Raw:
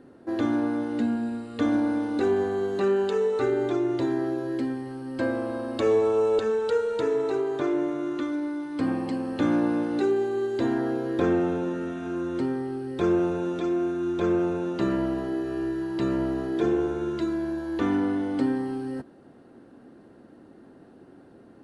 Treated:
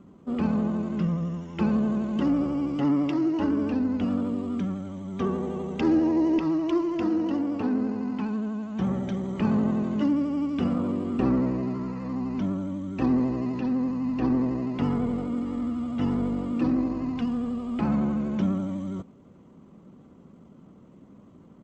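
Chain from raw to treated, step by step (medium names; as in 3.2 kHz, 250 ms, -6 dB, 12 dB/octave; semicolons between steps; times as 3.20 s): vibrato 12 Hz 53 cents; pitch shift -5.5 st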